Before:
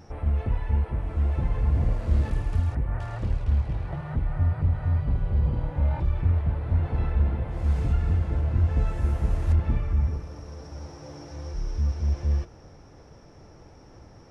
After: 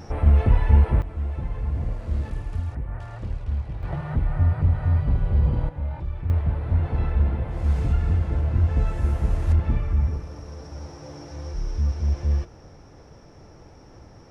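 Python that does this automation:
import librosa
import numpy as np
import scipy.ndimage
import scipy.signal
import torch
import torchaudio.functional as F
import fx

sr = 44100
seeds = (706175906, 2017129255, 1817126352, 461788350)

y = fx.gain(x, sr, db=fx.steps((0.0, 8.5), (1.02, -3.5), (3.83, 3.5), (5.69, -5.0), (6.3, 2.0)))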